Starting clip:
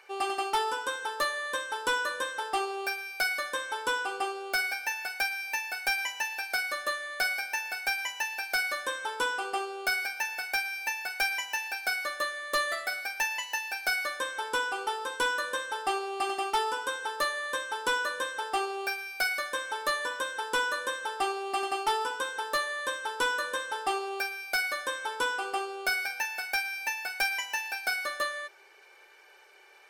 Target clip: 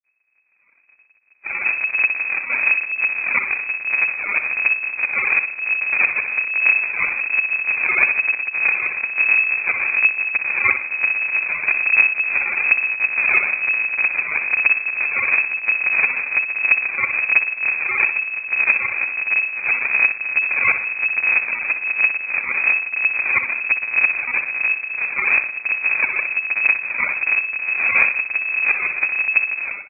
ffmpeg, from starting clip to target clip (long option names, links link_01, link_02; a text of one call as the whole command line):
ffmpeg -i in.wav -af "areverse,afftdn=noise_reduction=21:noise_floor=-44,highpass=frequency=110:poles=1,bandreject=frequency=820:width=14,dynaudnorm=framelen=160:gausssize=7:maxgain=12.5dB,bandreject=frequency=60:width_type=h:width=6,bandreject=frequency=120:width_type=h:width=6,bandreject=frequency=180:width_type=h:width=6,aresample=8000,acrusher=samples=41:mix=1:aa=0.000001:lfo=1:lforange=65.6:lforate=1.1,aresample=44100,aecho=1:1:62|124|186|248:0.355|0.114|0.0363|0.0116,lowpass=frequency=2200:width_type=q:width=0.5098,lowpass=frequency=2200:width_type=q:width=0.6013,lowpass=frequency=2200:width_type=q:width=0.9,lowpass=frequency=2200:width_type=q:width=2.563,afreqshift=-2600" out.wav